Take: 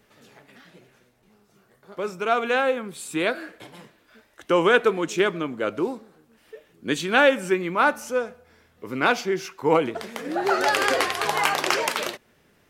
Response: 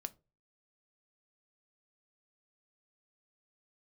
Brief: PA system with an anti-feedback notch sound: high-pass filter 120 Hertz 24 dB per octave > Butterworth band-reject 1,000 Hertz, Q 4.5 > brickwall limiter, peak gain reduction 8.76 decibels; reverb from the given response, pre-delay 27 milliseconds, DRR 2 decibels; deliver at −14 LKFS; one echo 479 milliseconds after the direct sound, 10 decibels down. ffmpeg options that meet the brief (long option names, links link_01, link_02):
-filter_complex "[0:a]aecho=1:1:479:0.316,asplit=2[link_01][link_02];[1:a]atrim=start_sample=2205,adelay=27[link_03];[link_02][link_03]afir=irnorm=-1:irlink=0,volume=1dB[link_04];[link_01][link_04]amix=inputs=2:normalize=0,highpass=frequency=120:width=0.5412,highpass=frequency=120:width=1.3066,asuperstop=centerf=1000:order=8:qfactor=4.5,volume=10dB,alimiter=limit=-2.5dB:level=0:latency=1"